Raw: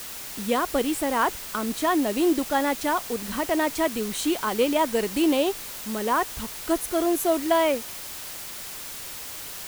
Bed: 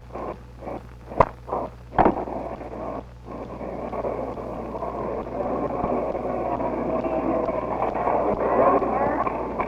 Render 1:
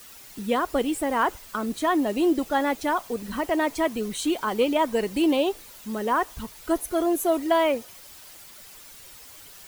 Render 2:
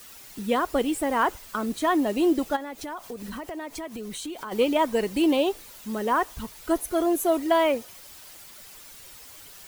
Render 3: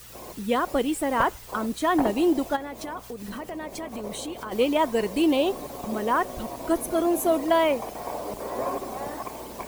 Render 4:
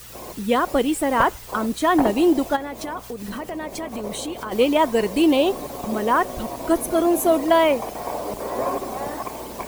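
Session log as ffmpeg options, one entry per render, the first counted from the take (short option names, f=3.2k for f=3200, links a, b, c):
-af "afftdn=nr=11:nf=-37"
-filter_complex "[0:a]asplit=3[a][b][c];[a]afade=t=out:st=2.55:d=0.02[d];[b]acompressor=threshold=-32dB:ratio=6:attack=3.2:release=140:knee=1:detection=peak,afade=t=in:st=2.55:d=0.02,afade=t=out:st=4.51:d=0.02[e];[c]afade=t=in:st=4.51:d=0.02[f];[d][e][f]amix=inputs=3:normalize=0"
-filter_complex "[1:a]volume=-11dB[a];[0:a][a]amix=inputs=2:normalize=0"
-af "volume=4.5dB"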